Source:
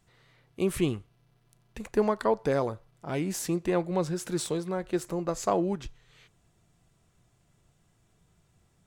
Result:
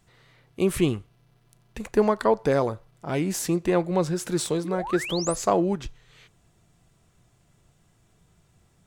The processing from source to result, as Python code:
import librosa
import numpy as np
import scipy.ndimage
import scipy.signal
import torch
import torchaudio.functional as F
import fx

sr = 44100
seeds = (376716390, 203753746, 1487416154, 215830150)

y = fx.spec_paint(x, sr, seeds[0], shape='rise', start_s=4.64, length_s=0.72, low_hz=290.0, high_hz=11000.0, level_db=-38.0)
y = F.gain(torch.from_numpy(y), 4.5).numpy()